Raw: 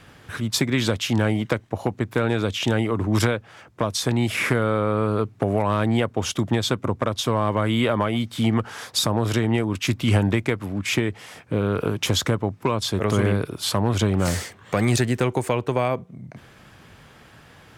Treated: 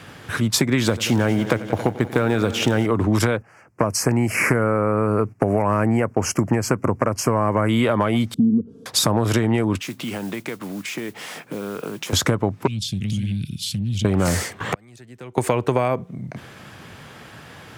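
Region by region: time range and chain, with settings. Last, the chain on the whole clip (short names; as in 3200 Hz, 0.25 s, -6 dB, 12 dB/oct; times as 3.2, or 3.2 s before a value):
0.82–2.86 G.711 law mismatch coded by A + multi-head echo 91 ms, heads all three, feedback 45%, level -19.5 dB
3.37–7.69 Butterworth band-stop 3600 Hz, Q 1.5 + gate -44 dBFS, range -11 dB
8.34–8.86 inverse Chebyshev low-pass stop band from 730 Hz + comb 4.4 ms, depth 72%
9.8–12.13 HPF 150 Hz 24 dB/oct + compressor 3:1, threshold -37 dBFS + modulation noise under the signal 18 dB
12.67–14.05 Chebyshev band-stop 200–2900 Hz, order 3 + high shelf 8000 Hz -11 dB + compressor 5:1, threshold -27 dBFS
14.6–15.38 flipped gate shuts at -17 dBFS, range -35 dB + three-band squash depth 100%
whole clip: HPF 84 Hz; dynamic EQ 3500 Hz, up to -5 dB, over -41 dBFS, Q 1.5; compressor, threshold -22 dBFS; gain +7.5 dB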